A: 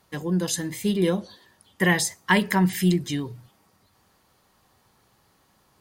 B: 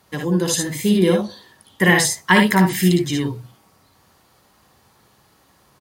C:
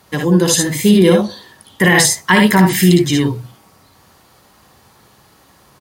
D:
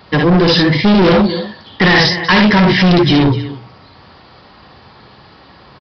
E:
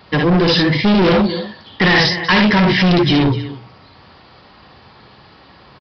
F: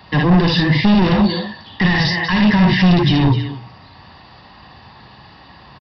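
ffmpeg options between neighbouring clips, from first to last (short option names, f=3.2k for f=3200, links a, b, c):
-filter_complex "[0:a]highpass=43,asplit=2[a][b];[b]aecho=0:1:58|72:0.562|0.447[c];[a][c]amix=inputs=2:normalize=0,volume=5dB"
-af "alimiter=limit=-8.5dB:level=0:latency=1:release=14,volume=7dB"
-af "aecho=1:1:250:0.119,aresample=11025,volume=16dB,asoftclip=hard,volume=-16dB,aresample=44100,volume=8.5dB"
-af "equalizer=f=2.6k:t=o:w=0.77:g=2,volume=-3dB"
-filter_complex "[0:a]aecho=1:1:1.1:0.44,acrossover=split=230[a][b];[b]alimiter=limit=-12dB:level=0:latency=1:release=22[c];[a][c]amix=inputs=2:normalize=0,volume=1dB"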